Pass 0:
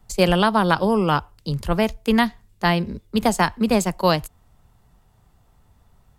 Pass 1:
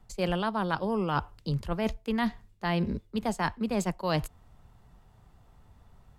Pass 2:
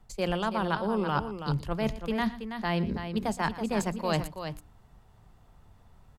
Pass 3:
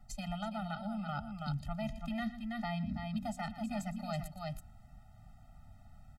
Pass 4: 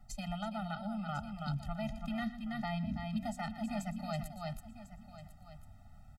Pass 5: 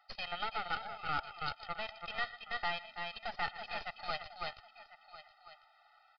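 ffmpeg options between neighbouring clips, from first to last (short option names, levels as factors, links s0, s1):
-af "highshelf=f=6200:g=-9,areverse,acompressor=threshold=0.0562:ratio=10,areverse"
-filter_complex "[0:a]bandreject=f=60:t=h:w=6,bandreject=f=120:t=h:w=6,bandreject=f=180:t=h:w=6,bandreject=f=240:t=h:w=6,bandreject=f=300:t=h:w=6,asplit=2[s0][s1];[s1]aecho=0:1:118|328:0.133|0.376[s2];[s0][s2]amix=inputs=2:normalize=0"
-af "acompressor=threshold=0.0158:ratio=3,afftfilt=real='re*eq(mod(floor(b*sr/1024/300),2),0)':imag='im*eq(mod(floor(b*sr/1024/300),2),0)':win_size=1024:overlap=0.75,volume=1.12"
-af "aecho=1:1:1048:0.188"
-af "highpass=f=890:w=0.5412,highpass=f=890:w=1.3066,aeval=exprs='0.0335*(cos(1*acos(clip(val(0)/0.0335,-1,1)))-cos(1*PI/2))+0.00422*(cos(8*acos(clip(val(0)/0.0335,-1,1)))-cos(8*PI/2))':c=same,aresample=11025,aresample=44100,volume=2.24"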